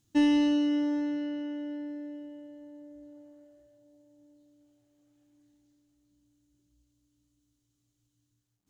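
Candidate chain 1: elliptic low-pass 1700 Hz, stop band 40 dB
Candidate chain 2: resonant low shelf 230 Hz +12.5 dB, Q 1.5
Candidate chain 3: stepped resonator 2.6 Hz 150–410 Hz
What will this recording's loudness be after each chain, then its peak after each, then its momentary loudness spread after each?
-30.0, -29.5, -36.0 LUFS; -16.5, -15.5, -22.5 dBFS; 23, 24, 21 LU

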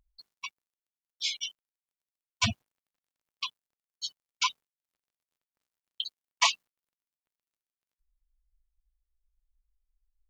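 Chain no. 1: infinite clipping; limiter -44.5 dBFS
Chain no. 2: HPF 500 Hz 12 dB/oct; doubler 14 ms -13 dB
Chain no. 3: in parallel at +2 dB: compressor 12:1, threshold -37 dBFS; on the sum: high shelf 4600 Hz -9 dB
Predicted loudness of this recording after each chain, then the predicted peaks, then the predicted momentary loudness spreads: -46.5, -31.5, -32.5 LUFS; -44.5, -8.0, -9.0 dBFS; 8, 16, 12 LU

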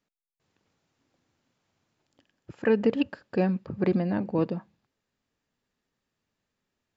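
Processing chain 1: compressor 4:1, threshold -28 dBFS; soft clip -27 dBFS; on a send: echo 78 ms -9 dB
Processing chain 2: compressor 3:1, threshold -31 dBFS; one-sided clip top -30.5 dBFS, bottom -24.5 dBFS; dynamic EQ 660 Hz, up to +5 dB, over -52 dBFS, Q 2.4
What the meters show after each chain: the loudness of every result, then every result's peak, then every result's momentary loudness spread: -36.0, -35.5 LUFS; -25.0, -22.0 dBFS; 7, 6 LU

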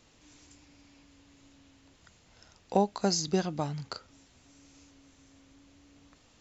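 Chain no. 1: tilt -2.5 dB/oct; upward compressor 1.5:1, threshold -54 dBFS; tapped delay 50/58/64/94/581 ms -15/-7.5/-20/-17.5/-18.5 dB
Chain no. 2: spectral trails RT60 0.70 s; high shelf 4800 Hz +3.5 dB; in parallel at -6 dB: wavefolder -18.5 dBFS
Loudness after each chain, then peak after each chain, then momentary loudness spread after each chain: -27.0, -25.0 LUFS; -8.5, -11.5 dBFS; 13, 13 LU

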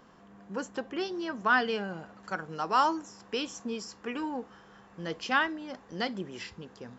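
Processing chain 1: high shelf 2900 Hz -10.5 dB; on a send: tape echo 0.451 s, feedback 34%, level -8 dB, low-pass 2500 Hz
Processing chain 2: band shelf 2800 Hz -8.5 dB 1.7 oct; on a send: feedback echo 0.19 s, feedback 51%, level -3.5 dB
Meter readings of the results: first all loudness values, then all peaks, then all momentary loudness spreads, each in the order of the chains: -33.5, -31.5 LUFS; -14.0, -12.0 dBFS; 13, 13 LU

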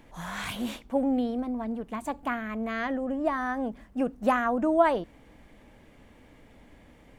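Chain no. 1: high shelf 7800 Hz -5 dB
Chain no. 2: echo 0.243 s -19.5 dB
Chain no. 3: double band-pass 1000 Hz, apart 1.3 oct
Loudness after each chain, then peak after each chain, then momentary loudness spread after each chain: -29.0, -29.0, -36.0 LUFS; -10.5, -10.0, -14.5 dBFS; 10, 10, 17 LU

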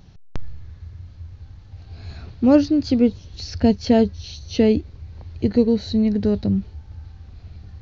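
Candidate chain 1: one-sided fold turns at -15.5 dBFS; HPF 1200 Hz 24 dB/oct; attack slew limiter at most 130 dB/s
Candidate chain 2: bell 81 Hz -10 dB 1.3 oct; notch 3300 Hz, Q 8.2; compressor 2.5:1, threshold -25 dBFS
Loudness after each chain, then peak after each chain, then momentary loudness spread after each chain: -39.5, -28.0 LUFS; -20.5, -12.0 dBFS; 19, 20 LU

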